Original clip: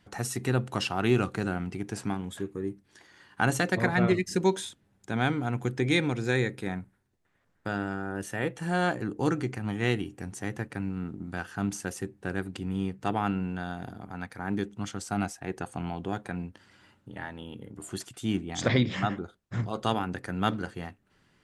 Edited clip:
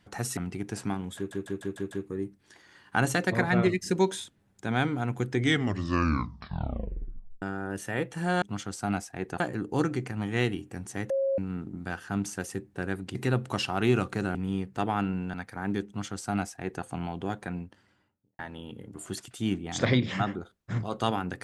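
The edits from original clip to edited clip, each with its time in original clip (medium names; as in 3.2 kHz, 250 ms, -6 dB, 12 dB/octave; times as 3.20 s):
0.37–1.57 s: move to 12.62 s
2.36 s: stutter 0.15 s, 6 plays
5.77 s: tape stop 2.10 s
10.57–10.85 s: bleep 543 Hz -23.5 dBFS
13.61–14.17 s: delete
14.70–15.68 s: copy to 8.87 s
16.26–17.22 s: studio fade out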